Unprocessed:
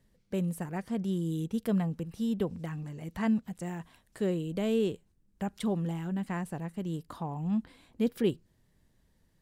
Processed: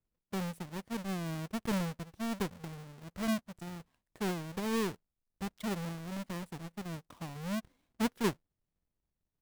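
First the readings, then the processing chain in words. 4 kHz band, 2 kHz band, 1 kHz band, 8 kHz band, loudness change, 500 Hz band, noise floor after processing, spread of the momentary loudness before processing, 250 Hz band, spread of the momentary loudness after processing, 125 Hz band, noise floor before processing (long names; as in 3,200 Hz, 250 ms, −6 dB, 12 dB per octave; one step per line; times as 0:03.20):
+2.5 dB, +2.5 dB, +0.5 dB, +4.0 dB, −4.5 dB, −6.0 dB, below −85 dBFS, 9 LU, −5.5 dB, 12 LU, −6.0 dB, −70 dBFS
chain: each half-wave held at its own peak
power curve on the samples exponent 1.4
level −6 dB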